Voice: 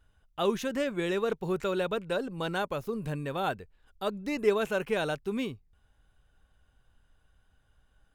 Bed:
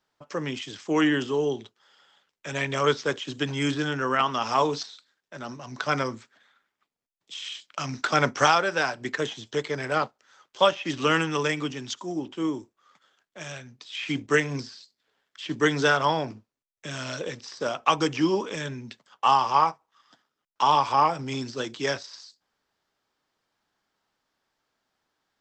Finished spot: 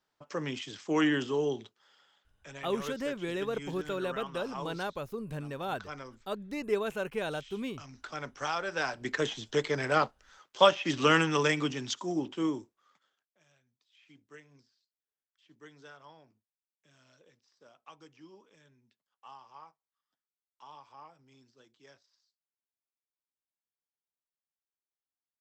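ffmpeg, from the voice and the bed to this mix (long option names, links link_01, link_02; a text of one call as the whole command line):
ffmpeg -i stem1.wav -i stem2.wav -filter_complex "[0:a]adelay=2250,volume=-4.5dB[link_01];[1:a]volume=12dB,afade=type=out:start_time=1.89:duration=0.73:silence=0.223872,afade=type=in:start_time=8.4:duration=0.96:silence=0.149624,afade=type=out:start_time=12.22:duration=1.16:silence=0.0334965[link_02];[link_01][link_02]amix=inputs=2:normalize=0" out.wav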